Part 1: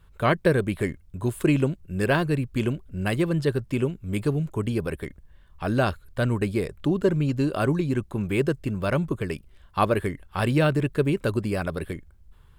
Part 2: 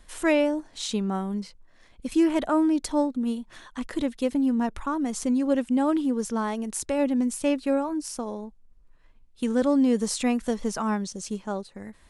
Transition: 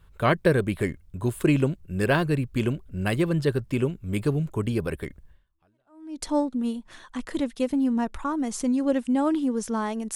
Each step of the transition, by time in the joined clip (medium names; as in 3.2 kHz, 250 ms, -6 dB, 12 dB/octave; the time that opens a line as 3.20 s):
part 1
5.77 s: go over to part 2 from 2.39 s, crossfade 0.94 s exponential